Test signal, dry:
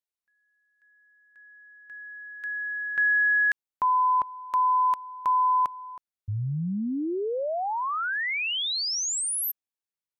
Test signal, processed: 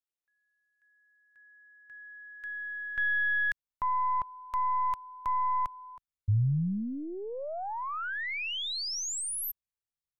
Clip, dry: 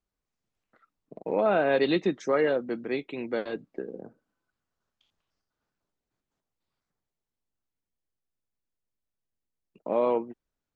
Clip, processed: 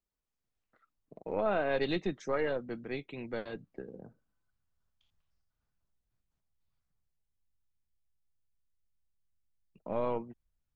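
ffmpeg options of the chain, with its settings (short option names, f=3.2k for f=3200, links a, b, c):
-af "aeval=exprs='0.237*(cos(1*acos(clip(val(0)/0.237,-1,1)))-cos(1*PI/2))+0.0211*(cos(2*acos(clip(val(0)/0.237,-1,1)))-cos(2*PI/2))':c=same,asubboost=boost=6:cutoff=130,volume=-6dB"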